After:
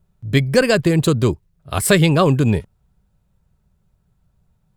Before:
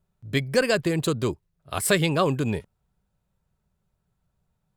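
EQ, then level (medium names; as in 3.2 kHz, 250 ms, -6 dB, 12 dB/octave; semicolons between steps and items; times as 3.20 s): bass shelf 210 Hz +8 dB; +5.5 dB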